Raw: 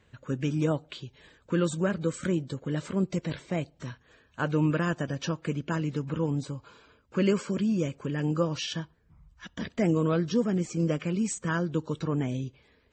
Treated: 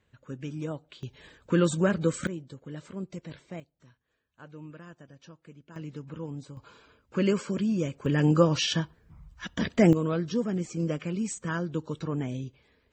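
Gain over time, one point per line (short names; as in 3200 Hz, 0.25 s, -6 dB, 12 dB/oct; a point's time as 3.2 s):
-8 dB
from 1.03 s +3 dB
from 2.27 s -9.5 dB
from 3.6 s -19.5 dB
from 5.76 s -9 dB
from 6.57 s -0.5 dB
from 8.06 s +6 dB
from 9.93 s -2.5 dB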